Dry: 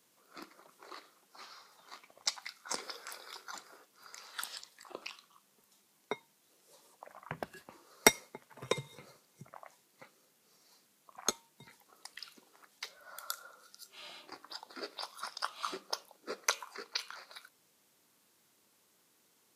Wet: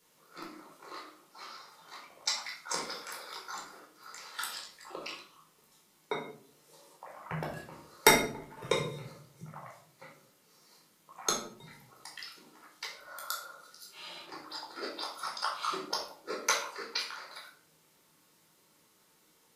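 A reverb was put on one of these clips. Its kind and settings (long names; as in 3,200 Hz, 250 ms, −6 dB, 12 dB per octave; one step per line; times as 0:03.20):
rectangular room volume 690 cubic metres, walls furnished, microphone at 4.4 metres
level −1.5 dB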